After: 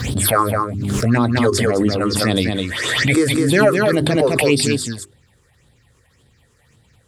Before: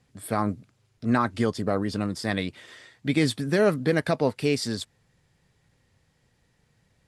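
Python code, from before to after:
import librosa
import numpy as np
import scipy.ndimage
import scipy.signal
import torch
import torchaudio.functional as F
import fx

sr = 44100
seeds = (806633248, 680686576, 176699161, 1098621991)

p1 = scipy.signal.sosfilt(scipy.signal.butter(2, 47.0, 'highpass', fs=sr, output='sos'), x)
p2 = fx.peak_eq(p1, sr, hz=170.0, db=-8.0, octaves=0.44)
p3 = fx.hum_notches(p2, sr, base_hz=50, count=8)
p4 = fx.rider(p3, sr, range_db=10, speed_s=0.5)
p5 = p3 + (p4 * 10.0 ** (1.0 / 20.0))
p6 = fx.phaser_stages(p5, sr, stages=6, low_hz=180.0, high_hz=1900.0, hz=1.8, feedback_pct=50)
p7 = p6 + fx.echo_single(p6, sr, ms=208, db=-4.0, dry=0)
p8 = fx.pre_swell(p7, sr, db_per_s=28.0)
y = p8 * 10.0 ** (3.5 / 20.0)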